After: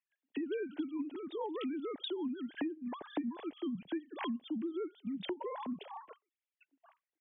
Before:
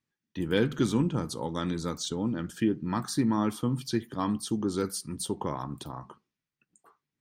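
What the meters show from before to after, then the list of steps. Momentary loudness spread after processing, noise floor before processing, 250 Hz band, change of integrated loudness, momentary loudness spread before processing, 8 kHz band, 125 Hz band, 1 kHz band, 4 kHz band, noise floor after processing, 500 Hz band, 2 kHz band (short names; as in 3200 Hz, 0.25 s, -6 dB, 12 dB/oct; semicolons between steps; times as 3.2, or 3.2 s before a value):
4 LU, under -85 dBFS, -9.0 dB, -9.5 dB, 10 LU, under -40 dB, -25.5 dB, -9.5 dB, -9.0 dB, under -85 dBFS, -7.5 dB, -9.0 dB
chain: sine-wave speech; bell 1200 Hz -10 dB 0.54 oct; compressor 10:1, threshold -39 dBFS, peak gain reduction 21 dB; gain +4 dB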